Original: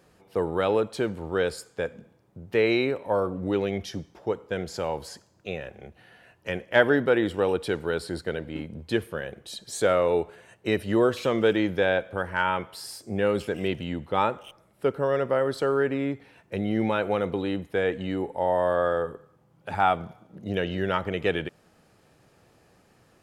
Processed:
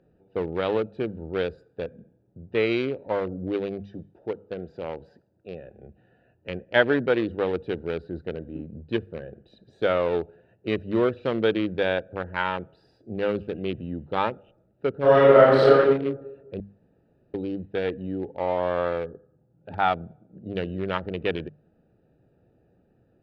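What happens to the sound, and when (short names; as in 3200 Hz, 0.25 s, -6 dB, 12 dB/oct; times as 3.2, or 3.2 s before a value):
3.8–5.74 low shelf 170 Hz -7 dB
15–15.71 reverb throw, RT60 1.2 s, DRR -10 dB
16.6–17.34 room tone
whole clip: Wiener smoothing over 41 samples; resonant high shelf 5600 Hz -13.5 dB, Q 1.5; notches 50/100/150/200 Hz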